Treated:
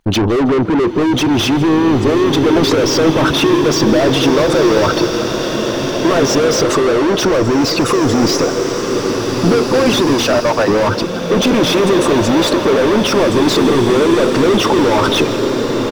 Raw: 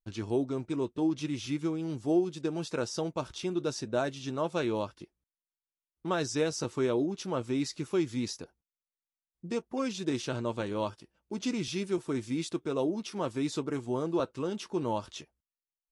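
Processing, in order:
spectral envelope exaggerated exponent 2
0:10.19–0:10.68: Butterworth high-pass 600 Hz 48 dB per octave
mid-hump overdrive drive 38 dB, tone 1,700 Hz, clips at −18.5 dBFS
echo with shifted repeats 160 ms, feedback 34%, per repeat +46 Hz, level −18.5 dB
boost into a limiter +24.5 dB
slow-attack reverb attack 2,170 ms, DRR 3.5 dB
level −8 dB

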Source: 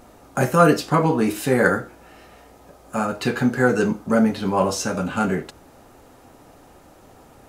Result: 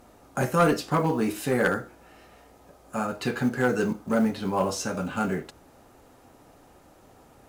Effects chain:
floating-point word with a short mantissa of 4 bits
asymmetric clip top −10.5 dBFS
level −5.5 dB

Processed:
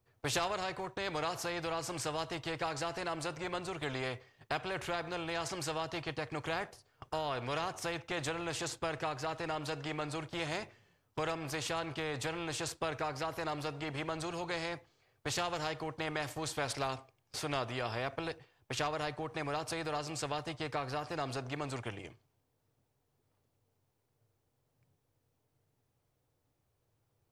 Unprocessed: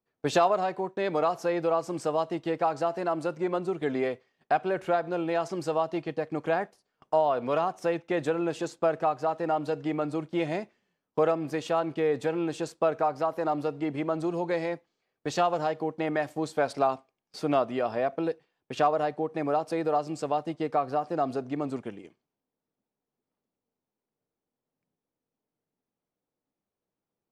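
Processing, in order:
low shelf with overshoot 150 Hz +9 dB, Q 3
every bin compressed towards the loudest bin 2 to 1
level −6.5 dB

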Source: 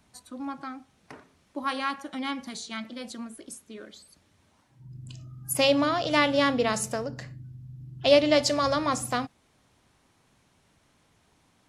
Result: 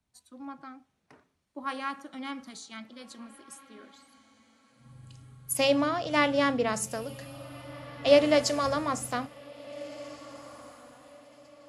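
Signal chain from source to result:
dynamic equaliser 3,900 Hz, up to −5 dB, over −42 dBFS, Q 1.8
feedback delay with all-pass diffusion 1,720 ms, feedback 42%, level −13 dB
multiband upward and downward expander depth 40%
level −4 dB

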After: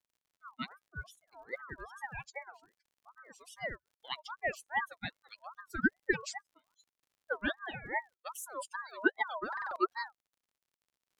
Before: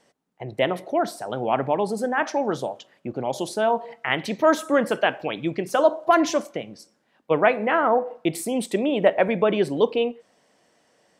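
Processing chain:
spectral dynamics exaggerated over time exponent 3
phaser with its sweep stopped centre 310 Hz, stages 6
surface crackle 100 per second −56 dBFS
buffer that repeats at 0:09.48, samples 2,048, times 5
ring modulator whose carrier an LFO sweeps 1,100 Hz, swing 30%, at 2.5 Hz
level −3.5 dB

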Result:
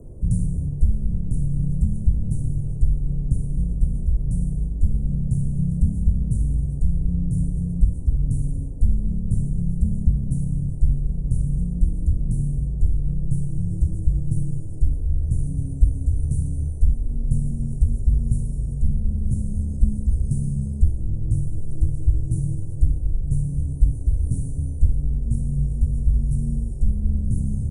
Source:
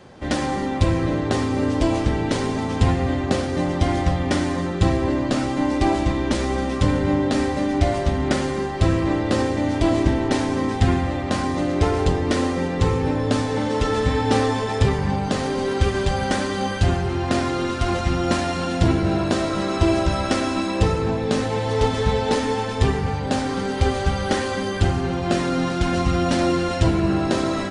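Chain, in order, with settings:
inverse Chebyshev band-stop filter 680–4,500 Hz, stop band 60 dB
speech leveller 0.5 s
frequency shifter −120 Hz
noise in a band 65–490 Hz −55 dBFS
level +5 dB

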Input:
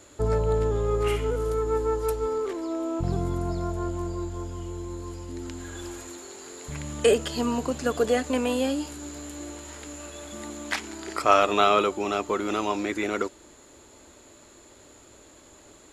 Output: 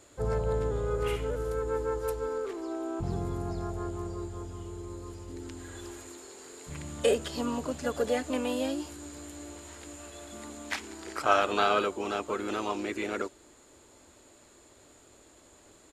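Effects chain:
pitch-shifted copies added +3 semitones −8 dB
downsampling to 32,000 Hz
level −6 dB

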